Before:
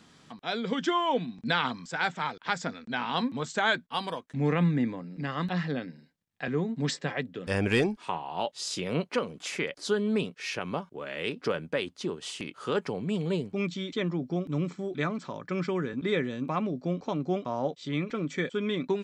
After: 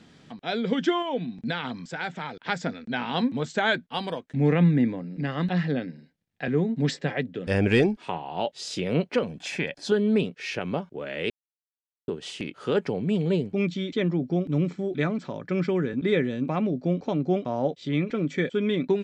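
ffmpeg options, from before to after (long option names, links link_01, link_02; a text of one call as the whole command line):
ffmpeg -i in.wav -filter_complex "[0:a]asettb=1/sr,asplit=3[link_01][link_02][link_03];[link_01]atrim=end=1.024[link_04];[link_02]atrim=start=1.02:end=2.35,asetpts=PTS-STARTPTS,afade=type=in:duration=0.004:curve=qsin,afade=type=out:start_time=1.326:duration=0.004:curve=qsin,acompressor=threshold=-36dB:ratio=1.5:attack=3.2:release=140:knee=1:detection=peak[link_05];[link_03]atrim=start=2.346[link_06];[link_04][link_05]acrossfade=duration=0.004:curve1=hsin:curve2=qsin[link_07];[link_07][link_06]acrossfade=duration=0.004:curve1=qsin:curve2=hsin,asettb=1/sr,asplit=3[link_08][link_09][link_10];[link_08]atrim=end=9.234[link_11];[link_09]atrim=start=9.23:end=9.92,asetpts=PTS-STARTPTS,afade=type=in:duration=0.004:curve=qsin,afade=type=out:start_time=0.686:duration=0.004:curve=qsin,aecho=1:1:1.2:0.49,atrim=end_sample=30429[link_12];[link_10]atrim=start=9.916[link_13];[link_11][link_12]acrossfade=duration=0.004:curve1=hsin:curve2=qsin[link_14];[link_14][link_13]acrossfade=duration=0.004:curve1=qsin:curve2=hsin,asplit=3[link_15][link_16][link_17];[link_15]atrim=end=11.3,asetpts=PTS-STARTPTS,afade=type=out:start_time=11.296:duration=0.004:curve=hsin[link_18];[link_16]atrim=start=11.3:end=12.08,asetpts=PTS-STARTPTS,volume=0[link_19];[link_17]atrim=start=12.08,asetpts=PTS-STARTPTS,afade=type=in:duration=0.004:curve=hsin[link_20];[link_18][link_19][link_20]concat=n=3:v=0:a=1,lowpass=frequency=2700:poles=1,equalizer=frequency=1100:width_type=o:width=0.69:gain=-8.5,volume=5.5dB" out.wav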